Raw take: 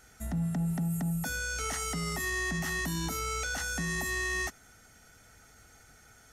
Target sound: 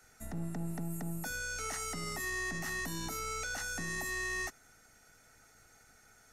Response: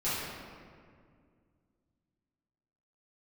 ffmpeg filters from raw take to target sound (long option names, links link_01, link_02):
-filter_complex "[0:a]acrossover=split=260[link_01][link_02];[link_01]aeval=exprs='max(val(0),0)':channel_layout=same[link_03];[link_03][link_02]amix=inputs=2:normalize=0,bandreject=frequency=3200:width=7.9,volume=-4dB"